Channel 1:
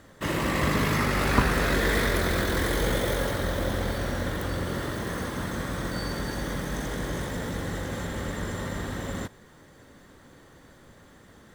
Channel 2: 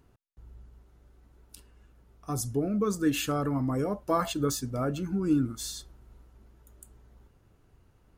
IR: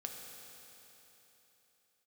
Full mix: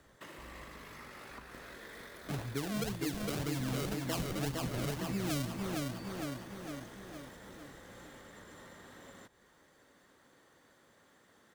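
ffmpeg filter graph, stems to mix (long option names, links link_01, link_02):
-filter_complex "[0:a]acompressor=threshold=-38dB:ratio=4,highpass=frequency=420:poles=1,volume=-9dB[link_01];[1:a]deesser=0.65,acrusher=samples=35:mix=1:aa=0.000001:lfo=1:lforange=35:lforate=1.9,volume=-5.5dB,asplit=2[link_02][link_03];[link_03]volume=-4dB,aecho=0:1:458|916|1374|1832|2290|2748|3206|3664:1|0.55|0.303|0.166|0.0915|0.0503|0.0277|0.0152[link_04];[link_01][link_02][link_04]amix=inputs=3:normalize=0,acrossover=split=160|3000[link_05][link_06][link_07];[link_06]acompressor=threshold=-35dB:ratio=6[link_08];[link_05][link_08][link_07]amix=inputs=3:normalize=0"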